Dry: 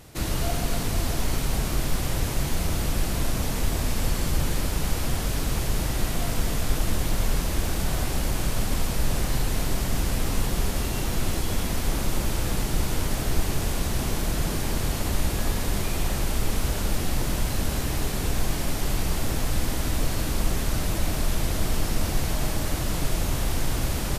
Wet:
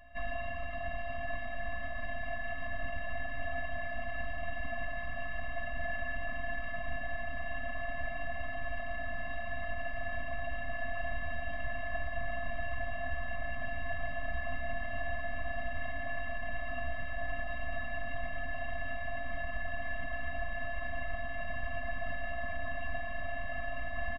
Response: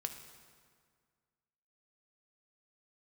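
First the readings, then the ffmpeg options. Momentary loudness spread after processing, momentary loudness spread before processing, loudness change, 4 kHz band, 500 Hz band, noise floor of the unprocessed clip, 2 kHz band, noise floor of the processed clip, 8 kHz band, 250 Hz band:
1 LU, 1 LU, -11.5 dB, -20.0 dB, -6.5 dB, -28 dBFS, 0.0 dB, -36 dBFS, under -40 dB, -20.0 dB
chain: -filter_complex "[0:a]aecho=1:1:5.6:0.7,asplit=2[a][b];[b]alimiter=limit=-18.5dB:level=0:latency=1:release=142,volume=-1dB[c];[a][c]amix=inputs=2:normalize=0,highpass=f=230:t=q:w=0.5412,highpass=f=230:t=q:w=1.307,lowpass=f=2.8k:t=q:w=0.5176,lowpass=f=2.8k:t=q:w=0.7071,lowpass=f=2.8k:t=q:w=1.932,afreqshift=-240,afftfilt=real='hypot(re,im)*cos(PI*b)':imag='0':win_size=512:overlap=0.75,aecho=1:1:1114|2228|3342:0.376|0.0977|0.0254,afftfilt=real='re*eq(mod(floor(b*sr/1024/260),2),0)':imag='im*eq(mod(floor(b*sr/1024/260),2),0)':win_size=1024:overlap=0.75"

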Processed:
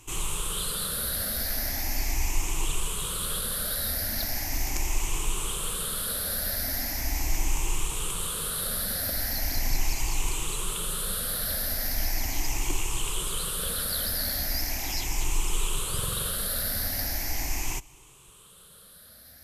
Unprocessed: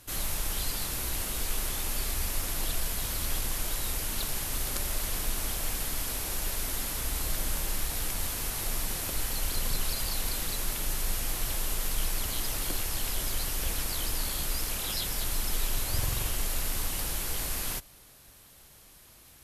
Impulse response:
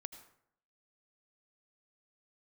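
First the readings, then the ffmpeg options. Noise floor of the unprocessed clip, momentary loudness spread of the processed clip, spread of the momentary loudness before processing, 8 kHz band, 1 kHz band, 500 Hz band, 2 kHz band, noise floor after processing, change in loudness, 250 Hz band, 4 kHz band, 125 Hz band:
-55 dBFS, 3 LU, 1 LU, +2.5 dB, +2.5 dB, +2.5 dB, +2.5 dB, -52 dBFS, +2.5 dB, +2.0 dB, +2.5 dB, +1.5 dB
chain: -af "afftfilt=real='re*pow(10,14/40*sin(2*PI*(0.69*log(max(b,1)*sr/1024/100)/log(2)-(0.39)*(pts-256)/sr)))':imag='im*pow(10,14/40*sin(2*PI*(0.69*log(max(b,1)*sr/1024/100)/log(2)-(0.39)*(pts-256)/sr)))':win_size=1024:overlap=0.75"

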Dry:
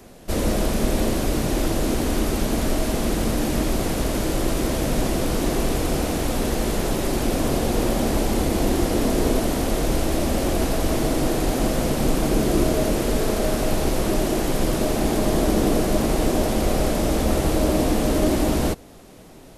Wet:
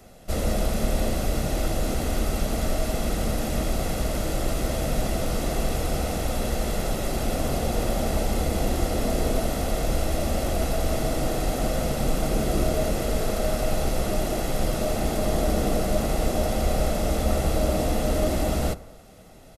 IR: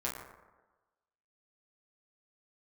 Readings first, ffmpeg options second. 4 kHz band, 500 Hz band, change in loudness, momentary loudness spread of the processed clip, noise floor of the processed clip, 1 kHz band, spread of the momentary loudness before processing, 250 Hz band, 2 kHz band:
-4.0 dB, -3.5 dB, -4.0 dB, 3 LU, -45 dBFS, -3.0 dB, 3 LU, -7.0 dB, -4.0 dB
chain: -filter_complex "[0:a]aecho=1:1:1.5:0.44,asplit=2[a][b];[1:a]atrim=start_sample=2205[c];[b][c]afir=irnorm=-1:irlink=0,volume=-16dB[d];[a][d]amix=inputs=2:normalize=0,volume=-5.5dB"

